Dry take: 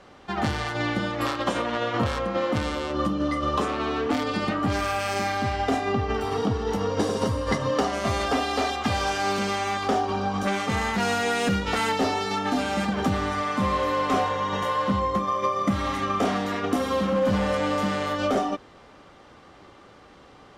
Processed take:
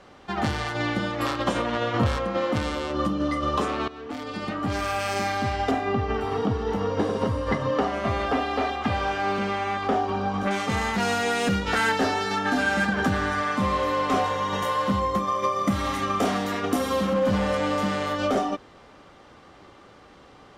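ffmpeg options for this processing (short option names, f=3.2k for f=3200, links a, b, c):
-filter_complex "[0:a]asettb=1/sr,asplit=3[a][b][c];[a]atrim=end=1.304[d];[b]atrim=start=1.3:end=2.17,asetpts=PTS-STARTPTS,afade=t=in:d=0.004:c=qsin,afade=t=out:st=0.866:d=0.004:c=qsin,lowshelf=f=160:g=6.5[e];[c]atrim=start=2.166[f];[d][e]acrossfade=d=0.004:c1=hsin:c2=qsin[g];[g][f]acrossfade=d=0.004:c1=qsin:c2=hsin,asettb=1/sr,asplit=3[h][i][j];[h]atrim=end=5.714[k];[i]atrim=start=5.71:end=10.51,asetpts=PTS-STARTPTS,afade=t=in:d=0.004:c=qsin,afade=t=out:st=4.796:d=0.004:c=qsin,acrossover=split=3300[l][m];[m]acompressor=threshold=-52dB:ratio=4:attack=1:release=60[n];[l][n]amix=inputs=2:normalize=0[o];[j]atrim=start=10.506[p];[k][o]acrossfade=d=0.004:c1=hsin:c2=qsin[q];[q][p]acrossfade=d=0.004:c1=qsin:c2=hsin,asettb=1/sr,asplit=3[r][s][t];[r]atrim=end=11.694[u];[s]atrim=start=11.69:end=13.55,asetpts=PTS-STARTPTS,afade=t=in:d=0.004:c=qsin,afade=t=out:st=1.856:d=0.004:c=qsin,equalizer=f=1.6k:t=o:w=0.21:g=12.5[v];[t]atrim=start=13.546[w];[u][v]acrossfade=d=0.004:c1=hsin:c2=qsin[x];[x][w]acrossfade=d=0.004:c1=qsin:c2=hsin,asettb=1/sr,asplit=3[y][z][aa];[y]atrim=end=14.244[ab];[z]atrim=start=14.24:end=17.14,asetpts=PTS-STARTPTS,afade=t=in:d=0.004:c=qsin,afade=t=out:st=2.896:d=0.004:c=qsin,highshelf=f=8.7k:g=10.5[ac];[aa]atrim=start=17.136[ad];[ab][ac]acrossfade=d=0.004:c1=hsin:c2=qsin[ae];[ae][ad]acrossfade=d=0.004:c1=qsin:c2=hsin,asplit=2[af][ag];[af]atrim=end=3.88,asetpts=PTS-STARTPTS,afade=t=out:st=3.876:d=0.004:c=hsin:silence=0.149624[ah];[ag]atrim=start=3.88,asetpts=PTS-STARTPTS,afade=t=in:d=1.13:silence=0.149624[ai];[ah][ai]concat=n=2:v=0:a=1"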